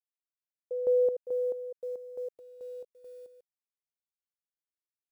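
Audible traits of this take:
a quantiser's noise floor 12 bits, dither none
chopped level 2.3 Hz, depth 65%, duty 50%

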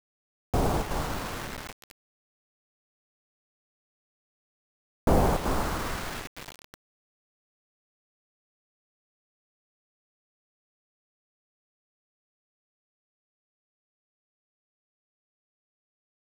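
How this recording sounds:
chopped level 1.1 Hz, depth 65%, duty 90%
a quantiser's noise floor 6 bits, dither none

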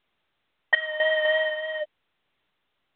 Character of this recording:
sample-and-hold tremolo 4 Hz, depth 85%
mu-law

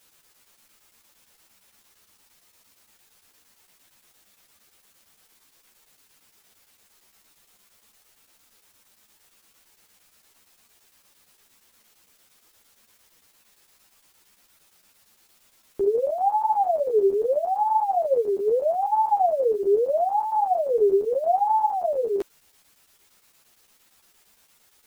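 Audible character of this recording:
a quantiser's noise floor 10 bits, dither triangular
chopped level 8.7 Hz, depth 60%, duty 80%
a shimmering, thickened sound

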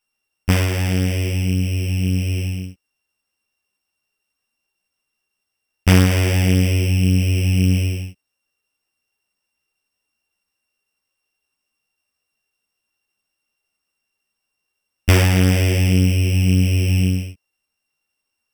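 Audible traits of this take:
a buzz of ramps at a fixed pitch in blocks of 16 samples
a shimmering, thickened sound

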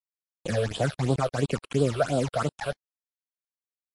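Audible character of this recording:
a quantiser's noise floor 6 bits, dither none
phaser sweep stages 8, 2.9 Hz, lowest notch 240–2,000 Hz
MP3

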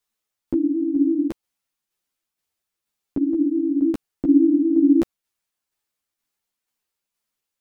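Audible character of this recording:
tremolo saw down 2.1 Hz, depth 40%
a shimmering, thickened sound

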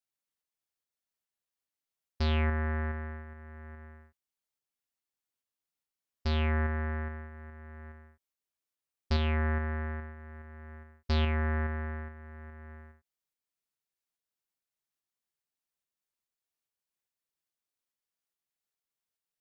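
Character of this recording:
tremolo saw up 2.4 Hz, depth 30%

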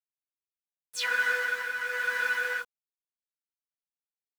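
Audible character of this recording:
a quantiser's noise floor 8 bits, dither none
tremolo triangle 1 Hz, depth 50%
a shimmering, thickened sound

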